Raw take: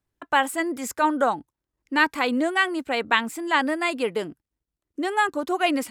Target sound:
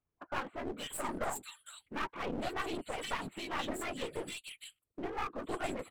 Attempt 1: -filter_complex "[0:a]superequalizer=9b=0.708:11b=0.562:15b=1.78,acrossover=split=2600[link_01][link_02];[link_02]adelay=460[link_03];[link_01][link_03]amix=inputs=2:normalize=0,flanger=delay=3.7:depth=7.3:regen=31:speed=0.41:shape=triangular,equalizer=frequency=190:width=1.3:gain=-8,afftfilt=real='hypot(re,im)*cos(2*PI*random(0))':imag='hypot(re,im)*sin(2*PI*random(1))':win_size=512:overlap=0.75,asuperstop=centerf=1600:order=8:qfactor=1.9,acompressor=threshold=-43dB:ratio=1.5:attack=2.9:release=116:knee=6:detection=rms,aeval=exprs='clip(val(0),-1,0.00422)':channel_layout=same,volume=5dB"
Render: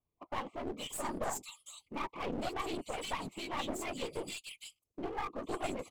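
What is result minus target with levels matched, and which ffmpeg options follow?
2,000 Hz band −2.5 dB
-filter_complex "[0:a]superequalizer=9b=0.708:11b=0.562:15b=1.78,acrossover=split=2600[link_01][link_02];[link_02]adelay=460[link_03];[link_01][link_03]amix=inputs=2:normalize=0,flanger=delay=3.7:depth=7.3:regen=31:speed=0.41:shape=triangular,equalizer=frequency=190:width=1.3:gain=-8,afftfilt=real='hypot(re,im)*cos(2*PI*random(0))':imag='hypot(re,im)*sin(2*PI*random(1))':win_size=512:overlap=0.75,asuperstop=centerf=5700:order=8:qfactor=1.9,acompressor=threshold=-43dB:ratio=1.5:attack=2.9:release=116:knee=6:detection=rms,aeval=exprs='clip(val(0),-1,0.00422)':channel_layout=same,volume=5dB"

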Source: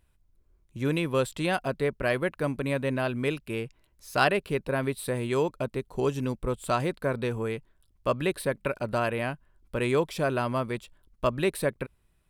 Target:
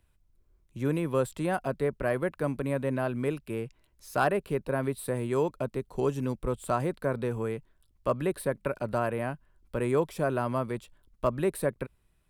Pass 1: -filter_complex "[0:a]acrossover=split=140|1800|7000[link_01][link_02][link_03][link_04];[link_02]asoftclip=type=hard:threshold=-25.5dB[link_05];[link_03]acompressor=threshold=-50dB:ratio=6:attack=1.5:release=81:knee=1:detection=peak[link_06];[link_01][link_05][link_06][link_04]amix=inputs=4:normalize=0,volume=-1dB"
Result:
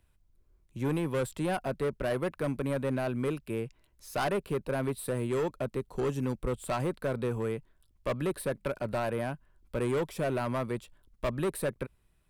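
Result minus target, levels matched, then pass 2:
hard clipping: distortion +24 dB
-filter_complex "[0:a]acrossover=split=140|1800|7000[link_01][link_02][link_03][link_04];[link_02]asoftclip=type=hard:threshold=-13.5dB[link_05];[link_03]acompressor=threshold=-50dB:ratio=6:attack=1.5:release=81:knee=1:detection=peak[link_06];[link_01][link_05][link_06][link_04]amix=inputs=4:normalize=0,volume=-1dB"

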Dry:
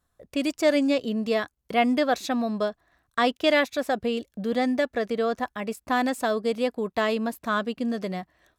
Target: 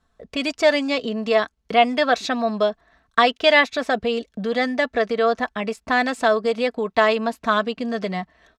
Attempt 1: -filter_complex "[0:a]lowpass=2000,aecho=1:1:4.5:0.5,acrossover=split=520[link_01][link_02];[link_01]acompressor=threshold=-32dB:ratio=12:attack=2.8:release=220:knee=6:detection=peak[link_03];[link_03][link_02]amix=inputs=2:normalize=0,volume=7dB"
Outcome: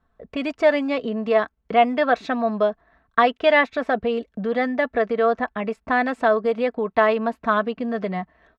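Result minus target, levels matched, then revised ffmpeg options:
4,000 Hz band −8.0 dB
-filter_complex "[0:a]lowpass=5400,aecho=1:1:4.5:0.5,acrossover=split=520[link_01][link_02];[link_01]acompressor=threshold=-32dB:ratio=12:attack=2.8:release=220:knee=6:detection=peak[link_03];[link_03][link_02]amix=inputs=2:normalize=0,volume=7dB"

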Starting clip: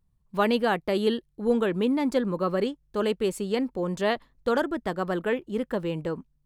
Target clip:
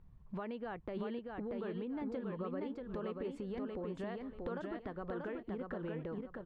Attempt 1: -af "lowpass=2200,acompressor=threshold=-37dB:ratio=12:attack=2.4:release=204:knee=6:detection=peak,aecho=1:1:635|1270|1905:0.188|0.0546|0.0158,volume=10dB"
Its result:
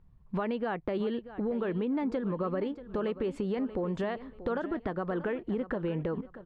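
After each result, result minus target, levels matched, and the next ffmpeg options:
downward compressor: peak gain reduction −10.5 dB; echo-to-direct −11 dB
-af "lowpass=2200,acompressor=threshold=-48.5dB:ratio=12:attack=2.4:release=204:knee=6:detection=peak,aecho=1:1:635|1270|1905:0.188|0.0546|0.0158,volume=10dB"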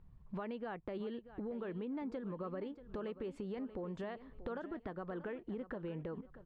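echo-to-direct −11 dB
-af "lowpass=2200,acompressor=threshold=-48.5dB:ratio=12:attack=2.4:release=204:knee=6:detection=peak,aecho=1:1:635|1270|1905|2540:0.668|0.194|0.0562|0.0163,volume=10dB"

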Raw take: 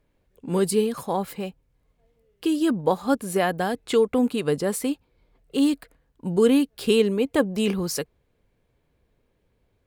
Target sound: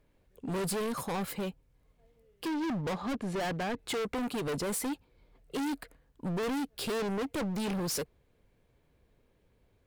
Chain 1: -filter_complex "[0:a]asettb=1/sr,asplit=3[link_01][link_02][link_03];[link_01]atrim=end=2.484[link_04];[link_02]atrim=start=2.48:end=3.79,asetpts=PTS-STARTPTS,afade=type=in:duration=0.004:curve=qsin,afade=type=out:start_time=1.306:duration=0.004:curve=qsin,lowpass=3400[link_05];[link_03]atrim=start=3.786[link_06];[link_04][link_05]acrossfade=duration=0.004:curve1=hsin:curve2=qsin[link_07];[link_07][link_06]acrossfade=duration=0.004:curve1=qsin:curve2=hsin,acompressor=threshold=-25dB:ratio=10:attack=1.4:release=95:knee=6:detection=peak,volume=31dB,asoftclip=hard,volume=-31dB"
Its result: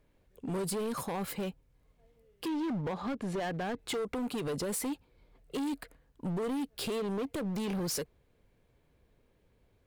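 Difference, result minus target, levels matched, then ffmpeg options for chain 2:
downward compressor: peak gain reduction +14.5 dB
-filter_complex "[0:a]asettb=1/sr,asplit=3[link_01][link_02][link_03];[link_01]atrim=end=2.484[link_04];[link_02]atrim=start=2.48:end=3.79,asetpts=PTS-STARTPTS,afade=type=in:duration=0.004:curve=qsin,afade=type=out:start_time=1.306:duration=0.004:curve=qsin,lowpass=3400[link_05];[link_03]atrim=start=3.786[link_06];[link_04][link_05]acrossfade=duration=0.004:curve1=hsin:curve2=qsin[link_07];[link_07][link_06]acrossfade=duration=0.004:curve1=qsin:curve2=hsin,volume=31dB,asoftclip=hard,volume=-31dB"

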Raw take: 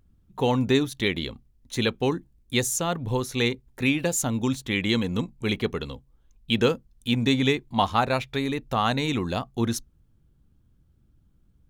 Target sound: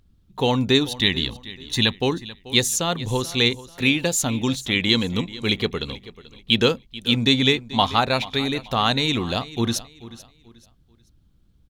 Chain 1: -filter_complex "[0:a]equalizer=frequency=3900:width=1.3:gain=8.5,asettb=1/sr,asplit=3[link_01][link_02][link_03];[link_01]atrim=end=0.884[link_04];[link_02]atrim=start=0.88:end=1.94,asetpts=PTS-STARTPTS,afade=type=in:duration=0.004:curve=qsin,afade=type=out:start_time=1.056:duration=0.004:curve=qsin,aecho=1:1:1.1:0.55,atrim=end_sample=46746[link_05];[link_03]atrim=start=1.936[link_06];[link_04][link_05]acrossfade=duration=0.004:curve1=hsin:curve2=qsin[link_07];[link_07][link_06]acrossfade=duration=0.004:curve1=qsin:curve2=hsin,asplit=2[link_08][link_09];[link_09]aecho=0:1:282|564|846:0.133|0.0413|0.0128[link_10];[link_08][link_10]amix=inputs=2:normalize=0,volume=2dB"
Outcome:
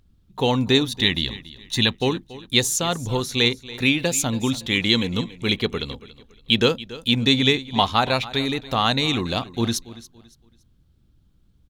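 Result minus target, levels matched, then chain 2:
echo 154 ms early
-filter_complex "[0:a]equalizer=frequency=3900:width=1.3:gain=8.5,asettb=1/sr,asplit=3[link_01][link_02][link_03];[link_01]atrim=end=0.884[link_04];[link_02]atrim=start=0.88:end=1.94,asetpts=PTS-STARTPTS,afade=type=in:duration=0.004:curve=qsin,afade=type=out:start_time=1.056:duration=0.004:curve=qsin,aecho=1:1:1.1:0.55,atrim=end_sample=46746[link_05];[link_03]atrim=start=1.936[link_06];[link_04][link_05]acrossfade=duration=0.004:curve1=hsin:curve2=qsin[link_07];[link_07][link_06]acrossfade=duration=0.004:curve1=qsin:curve2=hsin,asplit=2[link_08][link_09];[link_09]aecho=0:1:436|872|1308:0.133|0.0413|0.0128[link_10];[link_08][link_10]amix=inputs=2:normalize=0,volume=2dB"

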